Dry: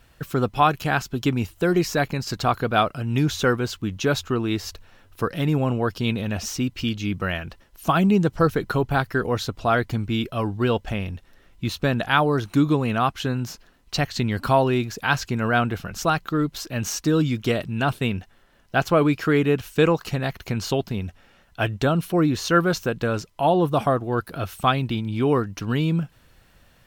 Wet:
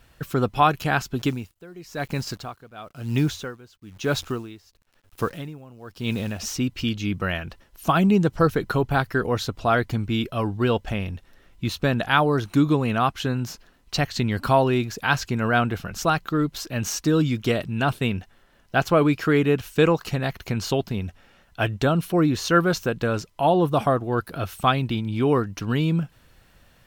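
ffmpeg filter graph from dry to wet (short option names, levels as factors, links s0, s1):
-filter_complex "[0:a]asettb=1/sr,asplit=3[s0][s1][s2];[s0]atrim=end=1.194[s3];[s1]atrim=start=1.19:end=6.4,asetpts=PTS-STARTPTS,afade=t=in:d=0.004:c=qsin,afade=t=out:st=5.206:d=0.004:c=qsin,acrusher=bits=8:dc=4:mix=0:aa=0.000001,aeval=exprs='val(0)*pow(10,-23*(0.5-0.5*cos(2*PI*1*n/s))/20)':c=same[s4];[s2]atrim=start=6.396[s5];[s3][s4]acrossfade=d=0.004:c1=hsin:c2=qsin[s6];[s6][s5]acrossfade=d=0.004:c1=qsin:c2=hsin"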